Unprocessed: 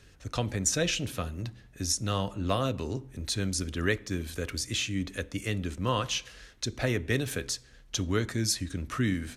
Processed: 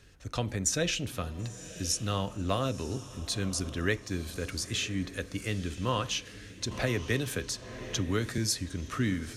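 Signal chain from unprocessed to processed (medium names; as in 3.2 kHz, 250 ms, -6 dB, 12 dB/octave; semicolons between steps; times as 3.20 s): on a send: echo that smears into a reverb 993 ms, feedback 40%, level -15 dB; 6.71–8.38 s: on the sum: three bands compressed up and down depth 40%; trim -1.5 dB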